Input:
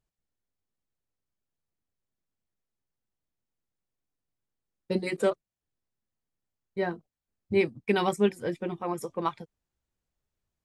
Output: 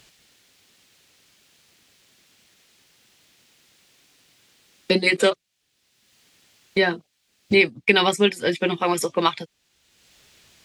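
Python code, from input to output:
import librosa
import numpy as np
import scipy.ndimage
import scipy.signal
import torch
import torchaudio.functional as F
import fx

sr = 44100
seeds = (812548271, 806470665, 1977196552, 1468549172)

y = fx.weighting(x, sr, curve='D')
y = fx.band_squash(y, sr, depth_pct=70)
y = y * 10.0 ** (8.0 / 20.0)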